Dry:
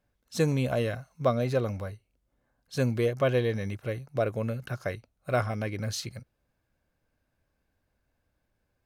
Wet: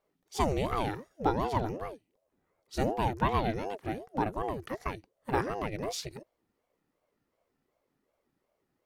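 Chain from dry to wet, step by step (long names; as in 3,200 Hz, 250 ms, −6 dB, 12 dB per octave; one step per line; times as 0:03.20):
ring modulator whose carrier an LFO sweeps 410 Hz, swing 50%, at 2.7 Hz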